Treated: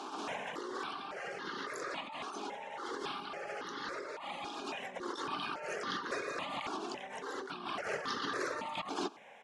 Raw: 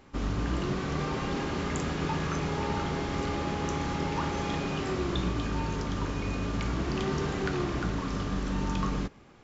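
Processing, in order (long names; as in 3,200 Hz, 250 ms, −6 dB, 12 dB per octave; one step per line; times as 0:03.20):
high-pass filter 380 Hz 24 dB per octave
reverb reduction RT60 1.8 s
low-pass filter 4,700 Hz 12 dB per octave
high-shelf EQ 3,000 Hz +4 dB
compressor whose output falls as the input rises −48 dBFS, ratio −1
pitch-shifted copies added −12 semitones −14 dB, −7 semitones −8 dB, +7 semitones −9 dB
step-sequenced phaser 3.6 Hz 530–2,400 Hz
level +9 dB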